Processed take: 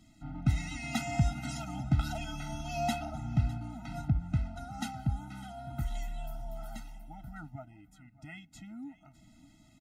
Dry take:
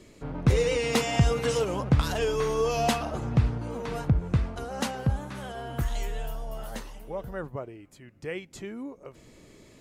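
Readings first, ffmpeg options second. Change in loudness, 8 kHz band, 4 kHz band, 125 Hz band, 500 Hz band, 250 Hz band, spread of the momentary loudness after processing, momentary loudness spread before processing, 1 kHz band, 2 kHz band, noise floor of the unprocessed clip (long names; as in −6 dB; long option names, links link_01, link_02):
−7.0 dB, −8.5 dB, −9.5 dB, −5.5 dB, −16.0 dB, −5.5 dB, 17 LU, 15 LU, −7.0 dB, −8.0 dB, −54 dBFS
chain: -af "aecho=1:1:605:0.112,afftfilt=real='re*eq(mod(floor(b*sr/1024/310),2),0)':imag='im*eq(mod(floor(b*sr/1024/310),2),0)':win_size=1024:overlap=0.75,volume=-5.5dB"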